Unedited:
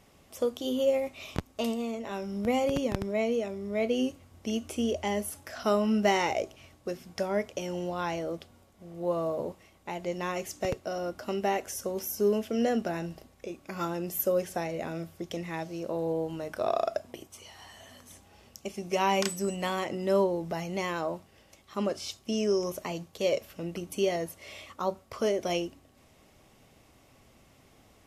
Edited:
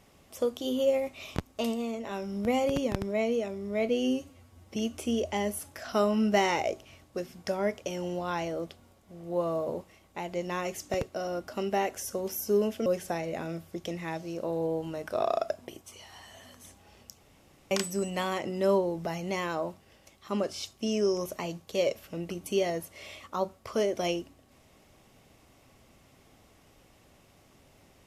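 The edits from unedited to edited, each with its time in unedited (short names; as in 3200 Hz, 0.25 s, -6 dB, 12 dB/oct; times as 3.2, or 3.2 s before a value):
3.89–4.47 stretch 1.5×
12.57–14.32 cut
18.64–19.17 room tone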